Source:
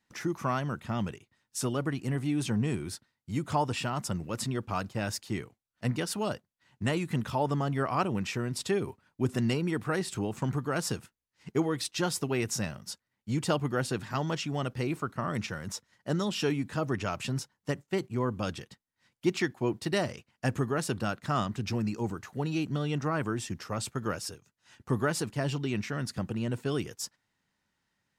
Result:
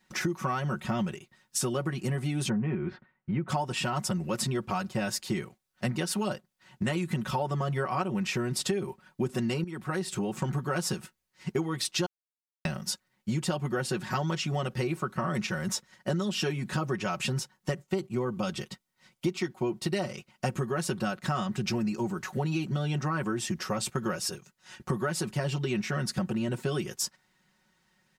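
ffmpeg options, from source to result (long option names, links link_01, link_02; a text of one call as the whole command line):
ffmpeg -i in.wav -filter_complex "[0:a]asplit=3[link_01][link_02][link_03];[link_01]afade=type=out:start_time=2.48:duration=0.02[link_04];[link_02]lowpass=frequency=2300:width=0.5412,lowpass=frequency=2300:width=1.3066,afade=type=in:start_time=2.48:duration=0.02,afade=type=out:start_time=3.48:duration=0.02[link_05];[link_03]afade=type=in:start_time=3.48:duration=0.02[link_06];[link_04][link_05][link_06]amix=inputs=3:normalize=0,asettb=1/sr,asplit=3[link_07][link_08][link_09];[link_07]atrim=end=17.844[link_10];[link_08]atrim=start=17.84:end=20.57,asetpts=PTS-STARTPTS,afade=type=in:duration=0.004:curve=qsin,afade=type=out:start_time=2.726:duration=0.004:curve=qsin,bandreject=frequency=1700:width=8.2[link_11];[link_09]atrim=start=20.566[link_12];[link_10][link_11]acrossfade=duration=0.004:curve1=hsin:curve2=qsin[link_13];[link_13][link_12]acrossfade=duration=0.004:curve1=qsin:curve2=hsin,asplit=4[link_14][link_15][link_16][link_17];[link_14]atrim=end=9.64,asetpts=PTS-STARTPTS,afade=type=out:start_time=9.636:duration=0.004:curve=hsin:silence=0.177828[link_18];[link_15]atrim=start=9.64:end=12.06,asetpts=PTS-STARTPTS,afade=type=in:duration=1.18:silence=0.177828,afade=type=out:start_time=2.416:duration=0.004:curve=hsin[link_19];[link_16]atrim=start=12.06:end=12.65,asetpts=PTS-STARTPTS,volume=0[link_20];[link_17]atrim=start=12.65,asetpts=PTS-STARTPTS,afade=type=in:duration=0.004:curve=hsin[link_21];[link_18][link_19][link_20][link_21]concat=n=4:v=0:a=1,aecho=1:1:5.4:0.82,acompressor=threshold=-34dB:ratio=6,volume=7dB" out.wav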